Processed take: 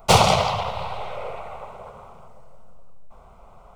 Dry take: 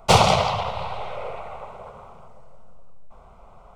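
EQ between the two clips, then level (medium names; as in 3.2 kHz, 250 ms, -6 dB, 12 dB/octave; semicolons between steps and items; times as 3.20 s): treble shelf 11 kHz +9.5 dB; 0.0 dB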